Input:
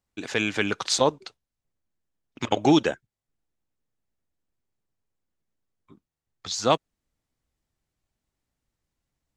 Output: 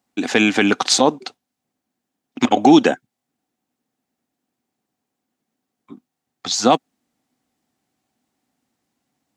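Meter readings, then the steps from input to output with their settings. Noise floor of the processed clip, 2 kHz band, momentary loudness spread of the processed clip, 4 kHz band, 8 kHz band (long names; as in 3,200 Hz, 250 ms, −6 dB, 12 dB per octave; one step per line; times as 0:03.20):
−81 dBFS, +8.0 dB, 13 LU, +7.5 dB, +8.5 dB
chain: high-pass filter 180 Hz 12 dB per octave
hollow resonant body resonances 250/750 Hz, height 10 dB, ringing for 40 ms
boost into a limiter +10 dB
level −1 dB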